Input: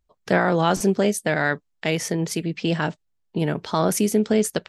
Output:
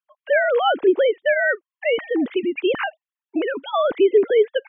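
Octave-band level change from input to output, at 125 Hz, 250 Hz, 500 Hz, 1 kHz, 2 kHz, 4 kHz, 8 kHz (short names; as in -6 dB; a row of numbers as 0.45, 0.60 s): under -25 dB, -3.0 dB, +5.5 dB, +0.5 dB, +4.0 dB, +0.5 dB, under -40 dB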